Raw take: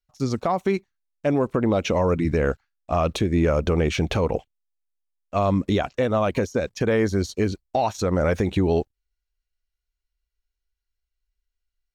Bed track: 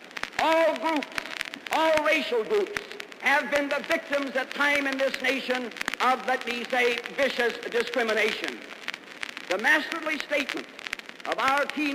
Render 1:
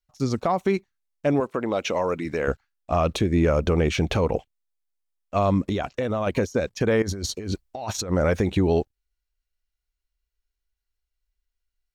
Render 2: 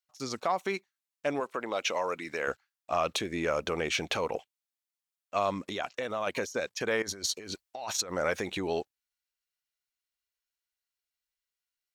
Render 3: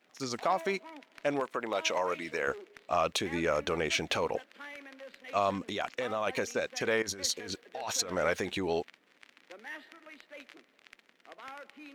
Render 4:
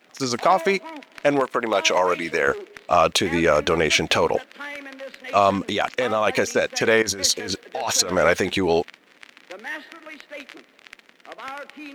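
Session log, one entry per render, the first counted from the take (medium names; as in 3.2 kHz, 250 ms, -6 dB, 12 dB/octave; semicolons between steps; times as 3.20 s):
1.40–2.48 s: high-pass 500 Hz 6 dB/octave; 5.65–6.27 s: compression, threshold -21 dBFS; 7.02–8.10 s: compressor with a negative ratio -30 dBFS
high-pass 1.2 kHz 6 dB/octave
add bed track -22.5 dB
trim +11.5 dB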